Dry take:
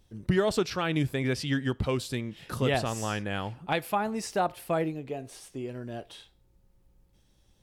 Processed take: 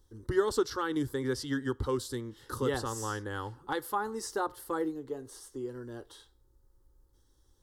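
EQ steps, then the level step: static phaser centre 660 Hz, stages 6; 0.0 dB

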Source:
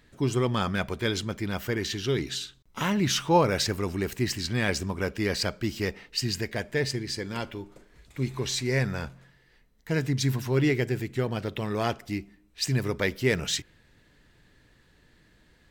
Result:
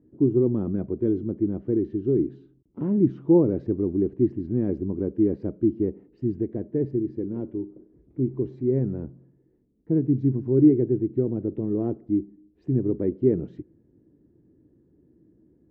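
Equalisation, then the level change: high-pass 77 Hz; resonant low-pass 330 Hz, resonance Q 3.7; 0.0 dB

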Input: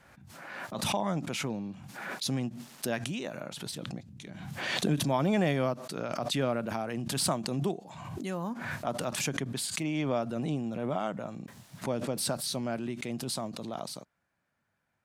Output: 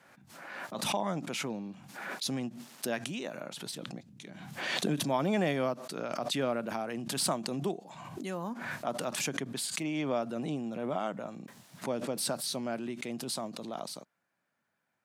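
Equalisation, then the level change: high-pass 180 Hz 12 dB/octave; -1.0 dB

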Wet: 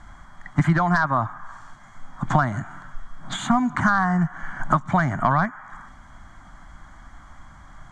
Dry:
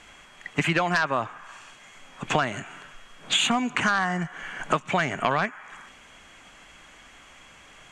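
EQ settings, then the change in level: low-pass 1.8 kHz 6 dB/octave; bass shelf 140 Hz +11.5 dB; static phaser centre 1.1 kHz, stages 4; +6.5 dB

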